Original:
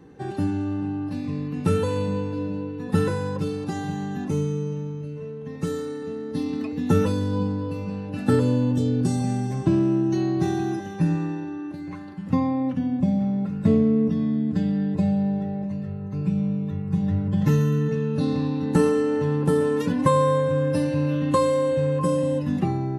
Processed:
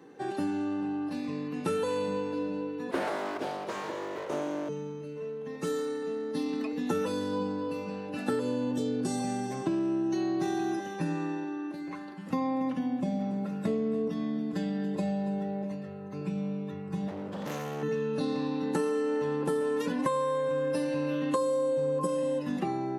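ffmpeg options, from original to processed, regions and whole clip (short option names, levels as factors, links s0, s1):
-filter_complex "[0:a]asettb=1/sr,asplit=3[s0][s1][s2];[s0]atrim=end=2.914[s3];[s1]atrim=start=2.91:end=4.69,asetpts=PTS-STARTPTS,afade=t=in:d=0.004:c=qsin,afade=t=out:st=1.776:d=0.004:c=qsin,highshelf=f=4900:g=-9,aeval=exprs='abs(val(0))':c=same,highpass=80[s4];[s2]atrim=start=4.686[s5];[s3][s4]acrossfade=d=0.004:c1=hsin:c2=qsin[s6];[s6][s5]acrossfade=d=0.004:c1=qsin:c2=hsin,asettb=1/sr,asplit=3[s7][s8][s9];[s7]atrim=end=12.214[s10];[s8]atrim=start=12.21:end=15.75,asetpts=PTS-STARTPTS,afade=t=in:d=0.004:c=qsin,afade=t=out:st=3.536:d=0.004:c=qsin,highshelf=f=9600:g=9,aecho=1:1:282:0.224,atrim=end_sample=156114[s11];[s9]atrim=start=15.746[s12];[s10][s11]acrossfade=d=0.004:c1=hsin:c2=qsin[s13];[s13][s12]acrossfade=d=0.004:c1=qsin:c2=hsin,asettb=1/sr,asplit=3[s14][s15][s16];[s14]atrim=end=17.084[s17];[s15]atrim=start=17.08:end=17.83,asetpts=PTS-STARTPTS,afade=t=in:d=0.004:c=qsin,afade=t=out:st=0.746:d=0.004:c=qsin,lowshelf=f=210:g=-4,asoftclip=type=hard:threshold=0.0447[s18];[s16]atrim=start=17.826[s19];[s17][s18]acrossfade=d=0.004:c1=hsin:c2=qsin[s20];[s20][s19]acrossfade=d=0.004:c1=qsin:c2=hsin,asettb=1/sr,asplit=3[s21][s22][s23];[s21]atrim=end=21.354[s24];[s22]atrim=start=21.35:end=22.07,asetpts=PTS-STARTPTS,afade=t=in:d=0.004:c=qsin,afade=t=out:st=0.716:d=0.004:c=qsin,equalizer=f=2200:w=0.92:g=-13.5,acontrast=48[s25];[s23]atrim=start=22.066[s26];[s24][s25]acrossfade=d=0.004:c1=hsin:c2=qsin[s27];[s27][s26]acrossfade=d=0.004:c1=qsin:c2=hsin,highpass=310,acompressor=threshold=0.0501:ratio=6"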